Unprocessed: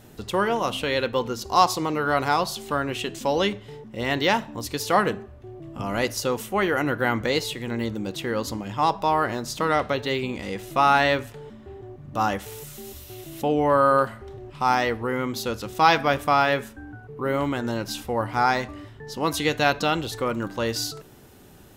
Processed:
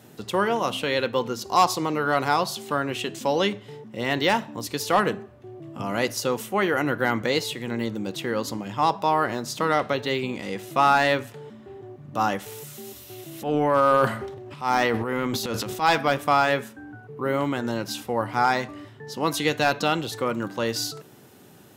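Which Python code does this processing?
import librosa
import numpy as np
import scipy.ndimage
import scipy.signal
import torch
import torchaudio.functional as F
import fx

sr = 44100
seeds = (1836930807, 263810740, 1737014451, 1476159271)

y = scipy.signal.sosfilt(scipy.signal.butter(4, 110.0, 'highpass', fs=sr, output='sos'), x)
y = fx.transient(y, sr, attack_db=-9, sustain_db=10, at=(13.29, 15.89))
y = np.clip(y, -10.0 ** (-9.5 / 20.0), 10.0 ** (-9.5 / 20.0))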